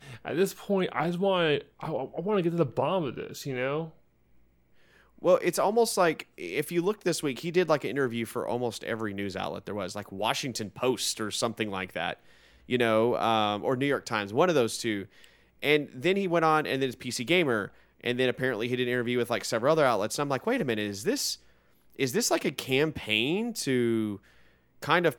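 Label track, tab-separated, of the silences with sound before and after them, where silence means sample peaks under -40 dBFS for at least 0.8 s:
3.890000	5.220000	silence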